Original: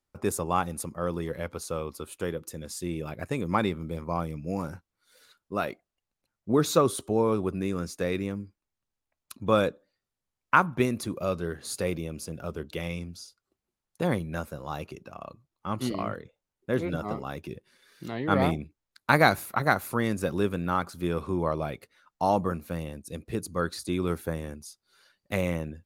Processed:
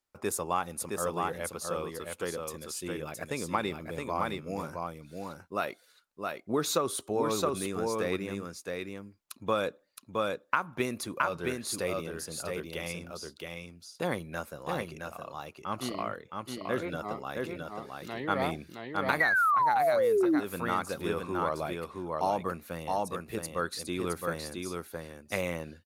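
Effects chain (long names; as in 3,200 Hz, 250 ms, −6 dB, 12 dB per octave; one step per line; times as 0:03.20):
low-shelf EQ 310 Hz −11 dB
on a send: single-tap delay 667 ms −4 dB
on the sum: sound drawn into the spectrogram fall, 0:19.20–0:20.40, 280–2,000 Hz −15 dBFS
downward compressor 10 to 1, threshold −23 dBFS, peak gain reduction 12 dB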